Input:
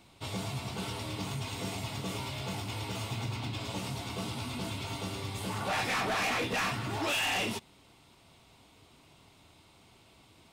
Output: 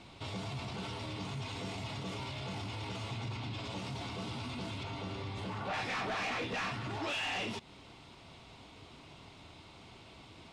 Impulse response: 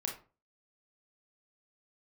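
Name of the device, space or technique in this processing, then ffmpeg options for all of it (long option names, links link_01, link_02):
stacked limiters: -filter_complex "[0:a]lowpass=5500,asettb=1/sr,asplit=3[link_01][link_02][link_03];[link_01]atrim=end=4.834[link_04];[link_02]atrim=start=4.83:end=5.74,asetpts=PTS-STARTPTS,afade=type=in:duration=0.004:curve=qsin,afade=type=out:start_time=0.906:duration=0.004:curve=qsin,highshelf=frequency=5700:gain=-11[link_05];[link_03]atrim=start=5.736[link_06];[link_04][link_05]acrossfade=duration=0.004:curve1=hsin:curve2=qsin[link_07];[link_07][link_06]acrossfade=duration=0.004:curve1=qsin:curve2=hsin,alimiter=level_in=8.5dB:limit=-24dB:level=0:latency=1:release=18,volume=-8.5dB,alimiter=level_in=15dB:limit=-24dB:level=0:latency=1:release=149,volume=-15dB,volume=6dB"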